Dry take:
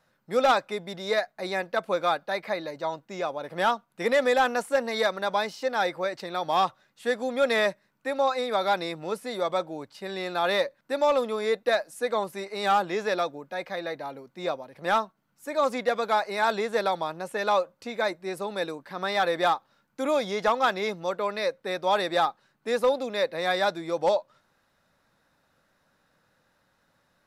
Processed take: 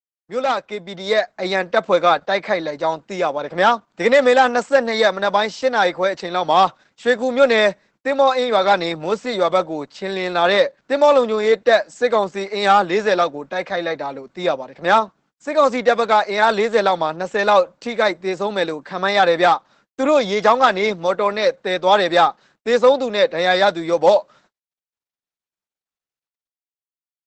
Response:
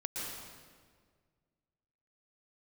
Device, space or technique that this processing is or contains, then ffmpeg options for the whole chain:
video call: -af "highpass=f=140:w=0.5412,highpass=f=140:w=1.3066,dynaudnorm=f=110:g=17:m=11dB,agate=range=-45dB:threshold=-50dB:ratio=16:detection=peak,volume=1dB" -ar 48000 -c:a libopus -b:a 12k

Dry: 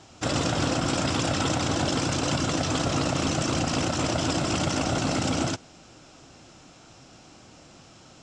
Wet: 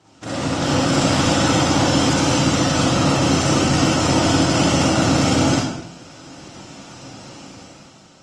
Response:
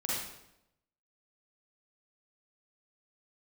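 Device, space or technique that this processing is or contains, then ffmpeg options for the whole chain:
far-field microphone of a smart speaker: -filter_complex "[1:a]atrim=start_sample=2205[a];[0:a][a]afir=irnorm=-1:irlink=0,highpass=f=84:w=0.5412,highpass=f=84:w=1.3066,dynaudnorm=f=150:g=9:m=10dB,volume=-3dB" -ar 48000 -c:a libopus -b:a 24k

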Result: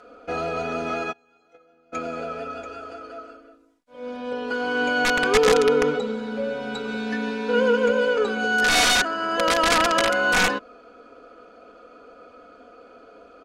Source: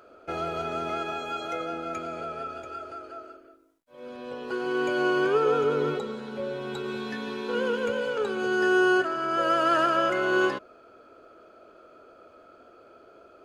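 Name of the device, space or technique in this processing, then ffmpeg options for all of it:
overflowing digital effects unit: -filter_complex "[0:a]asplit=3[a][b][c];[a]afade=t=out:st=1.11:d=0.02[d];[b]agate=range=-31dB:threshold=-26dB:ratio=16:detection=peak,afade=t=in:st=1.11:d=0.02,afade=t=out:st=1.92:d=0.02[e];[c]afade=t=in:st=1.92:d=0.02[f];[d][e][f]amix=inputs=3:normalize=0,aeval=exprs='(mod(6.31*val(0)+1,2)-1)/6.31':c=same,lowpass=8k,aecho=1:1:4.1:0.96,volume=3dB"

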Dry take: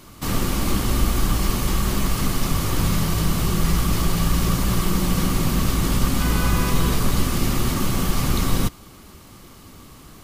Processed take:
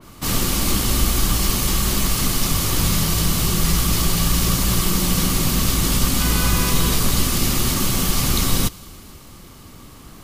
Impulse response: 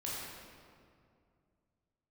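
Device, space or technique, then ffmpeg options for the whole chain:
ducked reverb: -filter_complex "[0:a]asplit=3[a][b][c];[1:a]atrim=start_sample=2205[d];[b][d]afir=irnorm=-1:irlink=0[e];[c]apad=whole_len=451163[f];[e][f]sidechaincompress=threshold=-31dB:ratio=8:attack=16:release=1100,volume=-9.5dB[g];[a][g]amix=inputs=2:normalize=0,adynamicequalizer=threshold=0.00562:dfrequency=2500:dqfactor=0.7:tfrequency=2500:tqfactor=0.7:attack=5:release=100:ratio=0.375:range=4:mode=boostabove:tftype=highshelf"

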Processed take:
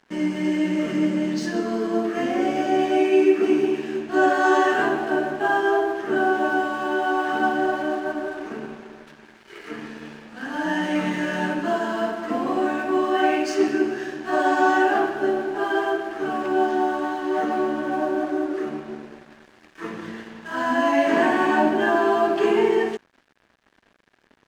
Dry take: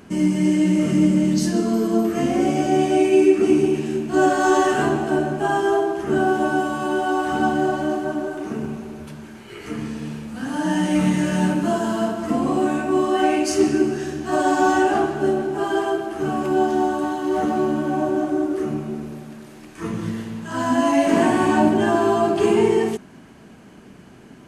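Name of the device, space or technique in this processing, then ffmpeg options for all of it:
pocket radio on a weak battery: -af "highpass=320,lowpass=4.3k,aeval=exprs='sgn(val(0))*max(abs(val(0))-0.00531,0)':c=same,equalizer=f=1.7k:t=o:w=0.32:g=6"

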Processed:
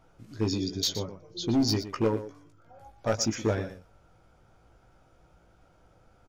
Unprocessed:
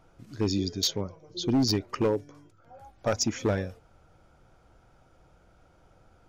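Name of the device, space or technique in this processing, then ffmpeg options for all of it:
slapback doubling: -filter_complex "[0:a]asplit=3[a][b][c];[b]adelay=18,volume=-6dB[d];[c]adelay=120,volume=-12dB[e];[a][d][e]amix=inputs=3:normalize=0,volume=-2dB"

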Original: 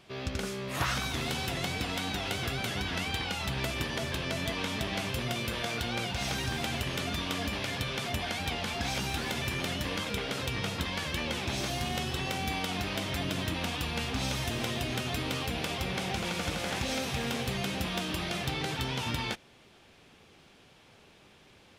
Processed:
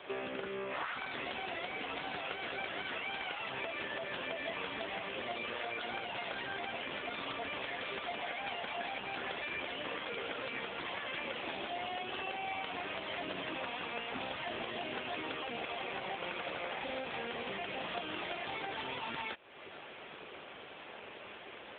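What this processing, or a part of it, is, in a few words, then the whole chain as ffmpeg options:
voicemail: -af "highpass=390,lowpass=3.2k,acompressor=threshold=-50dB:ratio=6,volume=14dB" -ar 8000 -c:a libopencore_amrnb -b:a 7950

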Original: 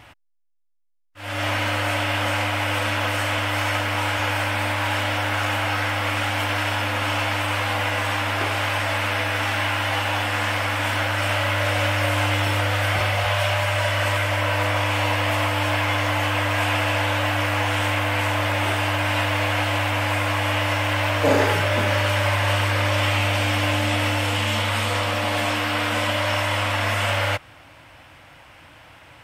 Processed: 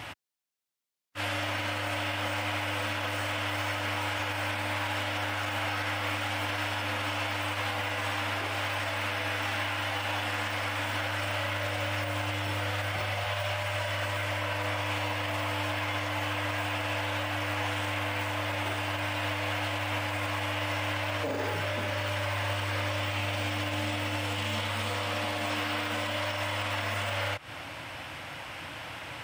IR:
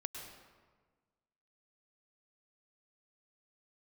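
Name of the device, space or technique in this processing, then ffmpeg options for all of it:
broadcast voice chain: -af "highpass=85,deesser=0.7,acompressor=threshold=-30dB:ratio=3,equalizer=f=4.1k:t=o:w=1.8:g=2.5,alimiter=level_in=4.5dB:limit=-24dB:level=0:latency=1:release=156,volume=-4.5dB,volume=6dB"

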